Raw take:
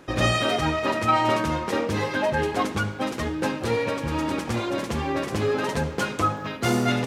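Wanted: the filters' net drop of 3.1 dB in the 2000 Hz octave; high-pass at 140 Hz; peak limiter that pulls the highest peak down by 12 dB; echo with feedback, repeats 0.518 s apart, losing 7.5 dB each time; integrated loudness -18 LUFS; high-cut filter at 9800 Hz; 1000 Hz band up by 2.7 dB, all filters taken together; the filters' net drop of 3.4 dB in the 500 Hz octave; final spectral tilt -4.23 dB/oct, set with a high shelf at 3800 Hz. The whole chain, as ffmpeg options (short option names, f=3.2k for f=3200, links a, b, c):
-af "highpass=140,lowpass=9.8k,equalizer=f=500:t=o:g=-6,equalizer=f=1k:t=o:g=7,equalizer=f=2k:t=o:g=-4.5,highshelf=f=3.8k:g=-7.5,alimiter=limit=-20dB:level=0:latency=1,aecho=1:1:518|1036|1554|2072|2590:0.422|0.177|0.0744|0.0312|0.0131,volume=10.5dB"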